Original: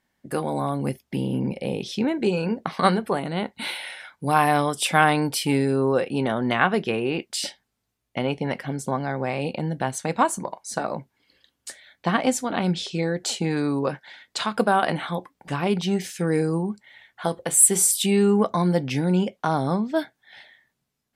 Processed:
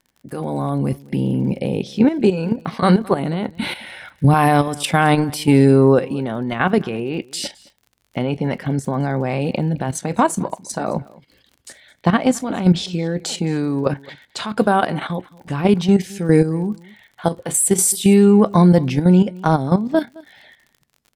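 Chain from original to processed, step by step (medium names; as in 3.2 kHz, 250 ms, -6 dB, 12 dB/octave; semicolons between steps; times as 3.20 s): 3.48–4.34 s: tone controls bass +10 dB, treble -4 dB; level held to a coarse grid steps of 11 dB; bass shelf 430 Hz +8 dB; level rider gain up to 8 dB; crackle 50 per s -38 dBFS; delay 215 ms -22.5 dB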